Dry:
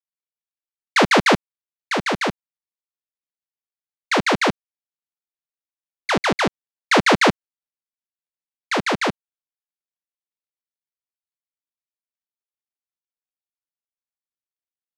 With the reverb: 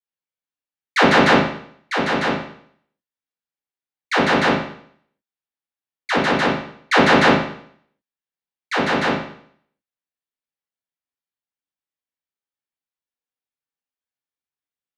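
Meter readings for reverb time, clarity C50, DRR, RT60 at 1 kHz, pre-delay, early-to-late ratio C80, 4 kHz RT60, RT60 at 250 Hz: 0.60 s, 3.0 dB, −8.0 dB, 0.60 s, 7 ms, 7.5 dB, 0.60 s, 0.60 s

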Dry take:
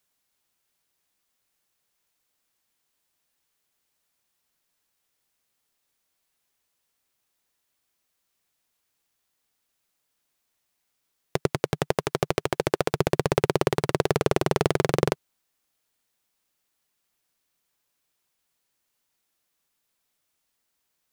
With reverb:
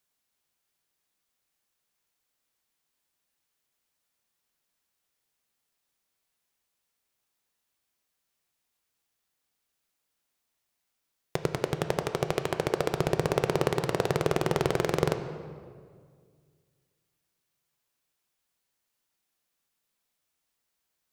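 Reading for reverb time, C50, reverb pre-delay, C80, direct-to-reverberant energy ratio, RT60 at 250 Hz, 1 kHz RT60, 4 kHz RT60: 1.9 s, 9.5 dB, 5 ms, 10.0 dB, 7.5 dB, 2.4 s, 1.8 s, 1.3 s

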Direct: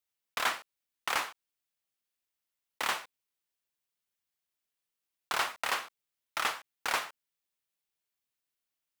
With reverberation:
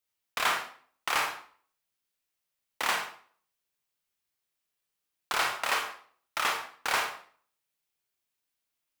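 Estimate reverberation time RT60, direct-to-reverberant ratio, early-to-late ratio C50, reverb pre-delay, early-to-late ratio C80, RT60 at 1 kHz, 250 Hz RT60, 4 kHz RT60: 0.45 s, 2.0 dB, 6.5 dB, 25 ms, 11.0 dB, 0.45 s, 0.50 s, 0.40 s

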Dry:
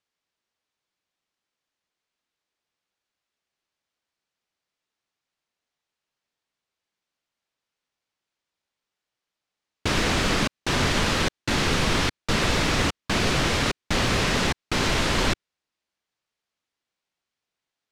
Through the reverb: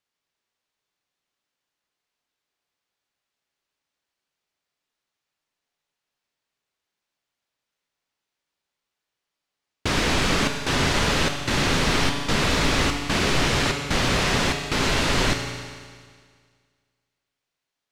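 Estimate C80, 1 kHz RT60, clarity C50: 6.5 dB, 1.8 s, 5.5 dB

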